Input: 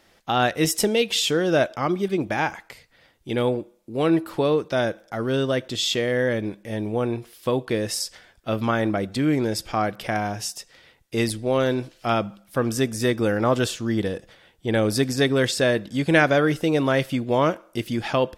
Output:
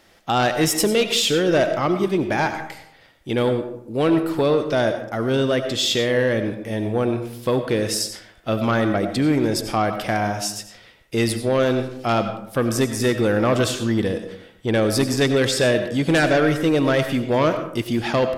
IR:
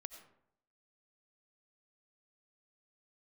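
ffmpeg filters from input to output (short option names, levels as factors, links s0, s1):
-filter_complex "[0:a]aeval=exprs='0.596*(cos(1*acos(clip(val(0)/0.596,-1,1)))-cos(1*PI/2))+0.211*(cos(5*acos(clip(val(0)/0.596,-1,1)))-cos(5*PI/2))':c=same[s0];[1:a]atrim=start_sample=2205[s1];[s0][s1]afir=irnorm=-1:irlink=0"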